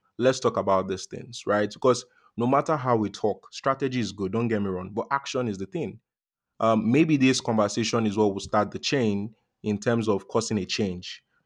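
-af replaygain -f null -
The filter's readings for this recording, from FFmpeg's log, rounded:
track_gain = +5.0 dB
track_peak = 0.263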